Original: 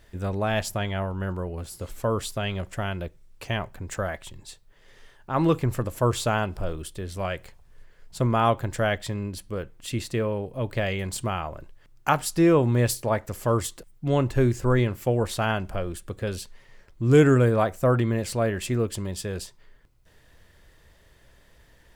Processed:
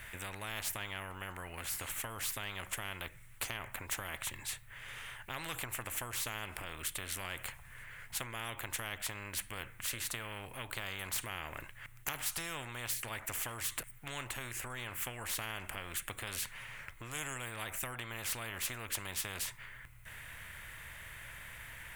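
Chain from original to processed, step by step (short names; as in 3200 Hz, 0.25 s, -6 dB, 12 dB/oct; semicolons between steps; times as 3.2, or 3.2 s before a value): EQ curve 120 Hz 0 dB, 180 Hz -16 dB, 400 Hz -23 dB, 2100 Hz +3 dB, 4900 Hz -18 dB, 9100 Hz -3 dB; compressor 3:1, threshold -35 dBFS, peak gain reduction 11 dB; spectral compressor 4:1; gain +2 dB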